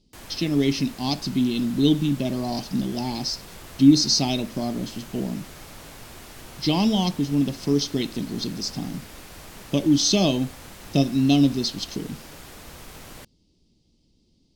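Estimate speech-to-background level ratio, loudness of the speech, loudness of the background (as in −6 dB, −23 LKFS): 19.0 dB, −23.0 LKFS, −42.0 LKFS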